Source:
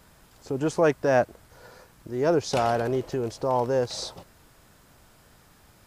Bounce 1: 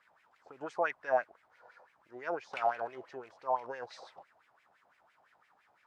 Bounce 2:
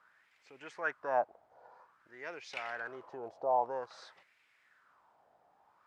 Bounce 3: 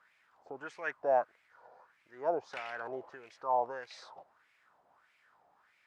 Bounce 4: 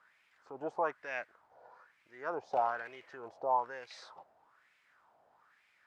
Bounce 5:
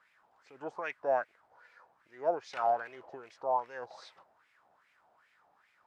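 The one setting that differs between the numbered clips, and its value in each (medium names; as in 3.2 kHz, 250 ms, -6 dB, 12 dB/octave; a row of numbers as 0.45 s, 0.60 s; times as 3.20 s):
wah-wah, rate: 5.9 Hz, 0.51 Hz, 1.6 Hz, 1.1 Hz, 2.5 Hz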